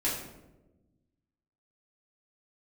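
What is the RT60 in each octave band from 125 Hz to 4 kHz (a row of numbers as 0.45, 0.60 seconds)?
1.8, 1.7, 1.3, 0.85, 0.70, 0.55 seconds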